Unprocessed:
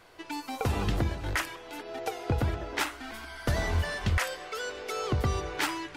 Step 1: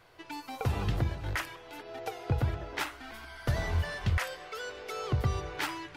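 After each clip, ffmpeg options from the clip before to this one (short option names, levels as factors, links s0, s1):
-af "equalizer=f=125:t=o:w=1:g=6,equalizer=f=250:t=o:w=1:g=-4,equalizer=f=8000:t=o:w=1:g=-4,volume=0.668"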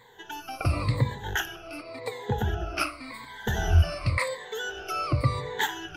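-af "afftfilt=real='re*pow(10,21/40*sin(2*PI*(1*log(max(b,1)*sr/1024/100)/log(2)-(-0.91)*(pts-256)/sr)))':imag='im*pow(10,21/40*sin(2*PI*(1*log(max(b,1)*sr/1024/100)/log(2)-(-0.91)*(pts-256)/sr)))':win_size=1024:overlap=0.75,volume=1.12"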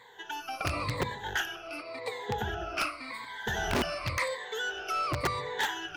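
-filter_complex "[0:a]aeval=exprs='(mod(5.96*val(0)+1,2)-1)/5.96':c=same,asplit=2[s0][s1];[s1]highpass=f=720:p=1,volume=4.47,asoftclip=type=tanh:threshold=0.168[s2];[s0][s2]amix=inputs=2:normalize=0,lowpass=f=4800:p=1,volume=0.501,volume=0.531"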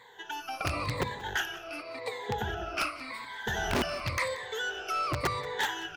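-af "aecho=1:1:182|364|546:0.112|0.046|0.0189"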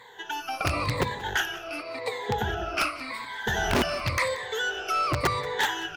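-af "volume=1.78" -ar 44100 -c:a libvorbis -b:a 96k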